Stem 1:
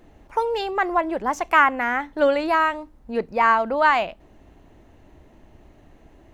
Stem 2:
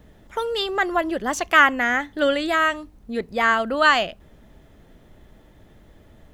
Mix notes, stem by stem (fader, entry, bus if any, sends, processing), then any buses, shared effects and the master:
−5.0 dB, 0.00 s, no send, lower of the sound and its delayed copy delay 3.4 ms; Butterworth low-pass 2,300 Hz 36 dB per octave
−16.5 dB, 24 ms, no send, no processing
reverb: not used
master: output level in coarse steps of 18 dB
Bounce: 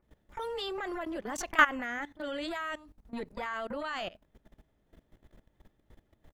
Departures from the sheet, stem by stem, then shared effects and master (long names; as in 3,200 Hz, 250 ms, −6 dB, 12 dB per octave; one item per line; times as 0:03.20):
stem 1 −5.0 dB → −13.5 dB
stem 2 −16.5 dB → −6.0 dB